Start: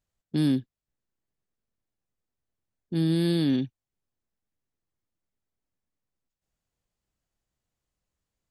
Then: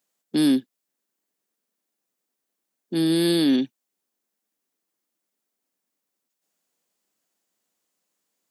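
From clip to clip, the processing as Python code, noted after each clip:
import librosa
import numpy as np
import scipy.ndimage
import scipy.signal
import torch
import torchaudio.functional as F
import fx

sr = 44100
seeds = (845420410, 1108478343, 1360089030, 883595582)

y = scipy.signal.sosfilt(scipy.signal.butter(4, 220.0, 'highpass', fs=sr, output='sos'), x)
y = fx.high_shelf(y, sr, hz=6100.0, db=9.0)
y = y * 10.0 ** (6.0 / 20.0)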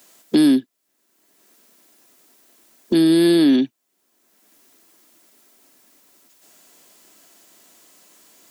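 y = x + 0.31 * np.pad(x, (int(3.0 * sr / 1000.0), 0))[:len(x)]
y = fx.band_squash(y, sr, depth_pct=70)
y = y * 10.0 ** (4.5 / 20.0)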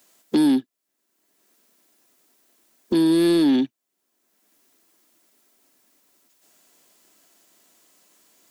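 y = fx.leveller(x, sr, passes=1)
y = y * 10.0 ** (-5.5 / 20.0)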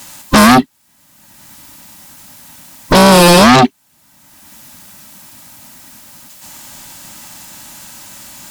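y = fx.band_invert(x, sr, width_hz=500)
y = fx.fold_sine(y, sr, drive_db=13, ceiling_db=-11.0)
y = y * 10.0 ** (8.0 / 20.0)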